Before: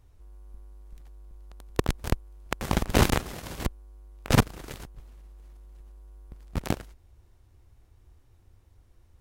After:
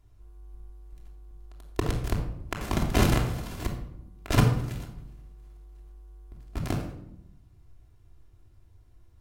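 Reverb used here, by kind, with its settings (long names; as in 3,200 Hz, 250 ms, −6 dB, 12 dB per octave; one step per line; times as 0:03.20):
rectangular room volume 1,900 cubic metres, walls furnished, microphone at 3.1 metres
level −5 dB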